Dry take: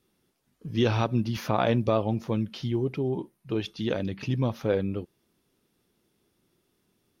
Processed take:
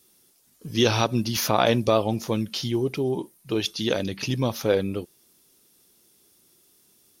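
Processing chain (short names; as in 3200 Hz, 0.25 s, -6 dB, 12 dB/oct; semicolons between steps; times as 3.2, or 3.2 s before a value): tone controls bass -5 dB, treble +15 dB; gain +4.5 dB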